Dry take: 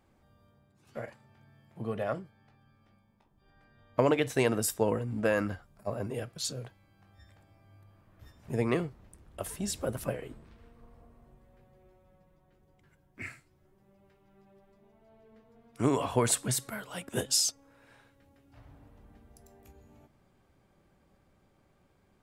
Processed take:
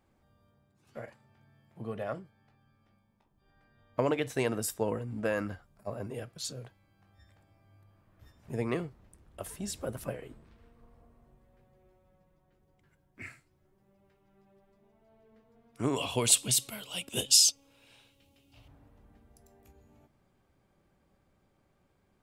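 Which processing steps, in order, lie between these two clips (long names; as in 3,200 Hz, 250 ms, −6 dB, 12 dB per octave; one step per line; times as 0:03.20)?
0:15.96–0:18.68: high shelf with overshoot 2,200 Hz +8 dB, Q 3
level −3.5 dB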